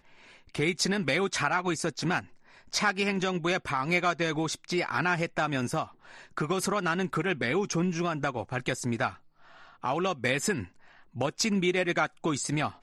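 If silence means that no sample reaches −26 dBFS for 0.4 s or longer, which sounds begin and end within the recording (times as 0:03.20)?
0:00.55–0:02.19
0:02.74–0:05.83
0:06.37–0:09.08
0:09.84–0:10.60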